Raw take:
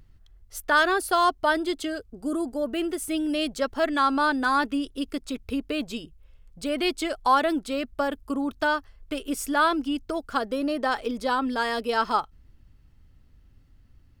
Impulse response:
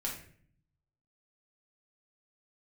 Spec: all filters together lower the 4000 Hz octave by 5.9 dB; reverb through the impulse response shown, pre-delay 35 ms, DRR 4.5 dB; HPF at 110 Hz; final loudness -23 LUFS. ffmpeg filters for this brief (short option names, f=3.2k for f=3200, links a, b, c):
-filter_complex "[0:a]highpass=110,equalizer=f=4k:t=o:g=-8,asplit=2[a][b];[1:a]atrim=start_sample=2205,adelay=35[c];[b][c]afir=irnorm=-1:irlink=0,volume=-6.5dB[d];[a][d]amix=inputs=2:normalize=0,volume=2dB"